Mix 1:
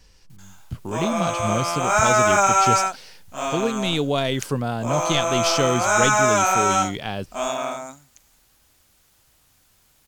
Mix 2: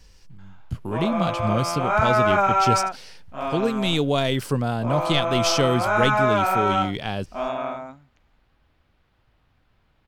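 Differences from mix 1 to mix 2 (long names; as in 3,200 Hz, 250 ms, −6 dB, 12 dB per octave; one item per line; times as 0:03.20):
background: add high-frequency loss of the air 390 metres
master: add low-shelf EQ 150 Hz +3.5 dB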